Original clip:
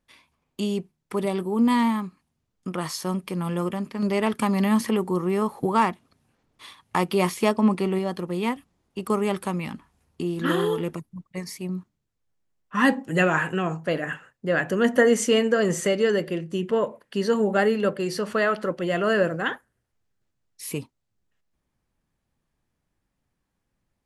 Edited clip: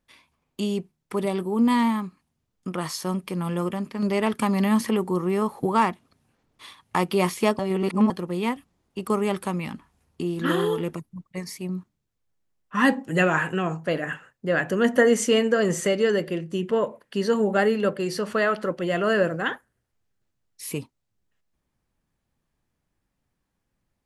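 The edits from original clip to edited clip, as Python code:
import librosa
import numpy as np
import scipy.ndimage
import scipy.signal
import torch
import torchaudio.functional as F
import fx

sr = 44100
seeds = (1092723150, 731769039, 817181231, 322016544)

y = fx.edit(x, sr, fx.reverse_span(start_s=7.59, length_s=0.51), tone=tone)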